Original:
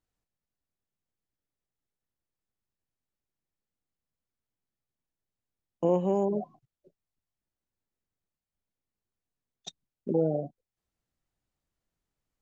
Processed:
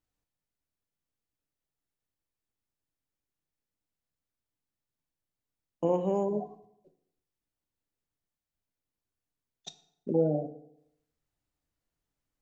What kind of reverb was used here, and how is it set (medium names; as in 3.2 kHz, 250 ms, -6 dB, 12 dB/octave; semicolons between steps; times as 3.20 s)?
FDN reverb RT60 0.79 s, low-frequency decay 1×, high-frequency decay 0.7×, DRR 9 dB; trim -1.5 dB